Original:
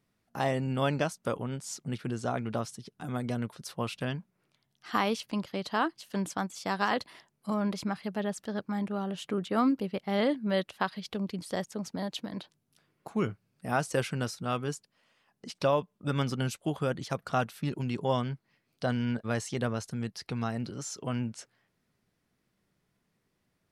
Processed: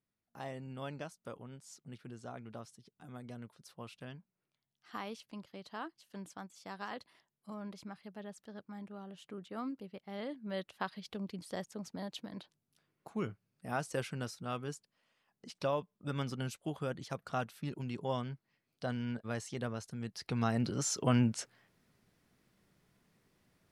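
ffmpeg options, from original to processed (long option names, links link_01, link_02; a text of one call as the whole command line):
ffmpeg -i in.wav -af "volume=4.5dB,afade=type=in:start_time=10.28:duration=0.59:silence=0.446684,afade=type=in:start_time=20:duration=0.9:silence=0.251189" out.wav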